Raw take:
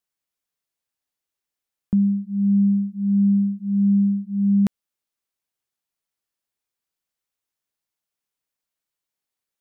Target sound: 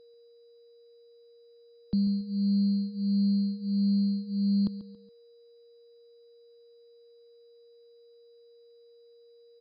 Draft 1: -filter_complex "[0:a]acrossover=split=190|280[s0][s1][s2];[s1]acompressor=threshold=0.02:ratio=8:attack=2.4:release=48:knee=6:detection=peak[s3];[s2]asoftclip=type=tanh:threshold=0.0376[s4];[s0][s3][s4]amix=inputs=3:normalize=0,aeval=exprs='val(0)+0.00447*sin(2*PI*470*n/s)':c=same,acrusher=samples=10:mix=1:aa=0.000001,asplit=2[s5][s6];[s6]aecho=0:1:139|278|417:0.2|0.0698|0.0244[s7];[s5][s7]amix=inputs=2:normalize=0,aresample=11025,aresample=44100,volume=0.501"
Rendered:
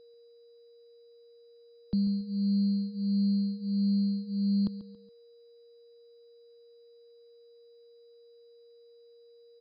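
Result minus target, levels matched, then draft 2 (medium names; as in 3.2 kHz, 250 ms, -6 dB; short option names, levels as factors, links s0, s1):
compression: peak gain reduction +6 dB
-filter_complex "[0:a]acrossover=split=190|280[s0][s1][s2];[s1]acompressor=threshold=0.0447:ratio=8:attack=2.4:release=48:knee=6:detection=peak[s3];[s2]asoftclip=type=tanh:threshold=0.0376[s4];[s0][s3][s4]amix=inputs=3:normalize=0,aeval=exprs='val(0)+0.00447*sin(2*PI*470*n/s)':c=same,acrusher=samples=10:mix=1:aa=0.000001,asplit=2[s5][s6];[s6]aecho=0:1:139|278|417:0.2|0.0698|0.0244[s7];[s5][s7]amix=inputs=2:normalize=0,aresample=11025,aresample=44100,volume=0.501"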